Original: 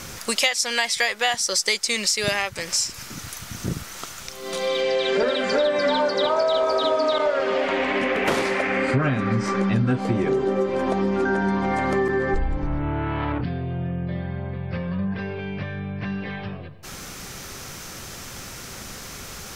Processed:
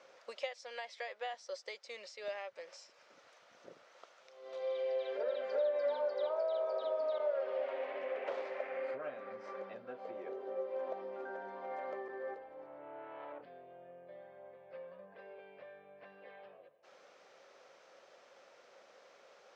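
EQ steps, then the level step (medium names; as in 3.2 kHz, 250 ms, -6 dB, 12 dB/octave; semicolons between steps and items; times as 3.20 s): band-pass filter 550 Hz, Q 4.2; distance through air 170 m; differentiator; +12.0 dB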